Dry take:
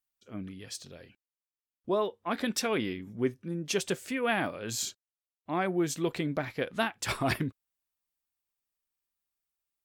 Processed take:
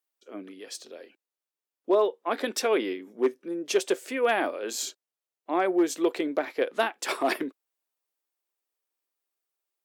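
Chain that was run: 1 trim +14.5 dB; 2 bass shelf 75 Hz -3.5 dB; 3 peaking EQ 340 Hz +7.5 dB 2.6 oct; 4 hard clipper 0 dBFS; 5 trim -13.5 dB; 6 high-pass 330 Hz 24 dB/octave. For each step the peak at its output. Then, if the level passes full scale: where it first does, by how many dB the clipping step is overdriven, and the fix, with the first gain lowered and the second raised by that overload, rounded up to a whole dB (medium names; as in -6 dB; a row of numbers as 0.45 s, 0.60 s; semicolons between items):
-1.0 dBFS, -1.0 dBFS, +4.5 dBFS, 0.0 dBFS, -13.5 dBFS, -10.5 dBFS; step 3, 4.5 dB; step 1 +9.5 dB, step 5 -8.5 dB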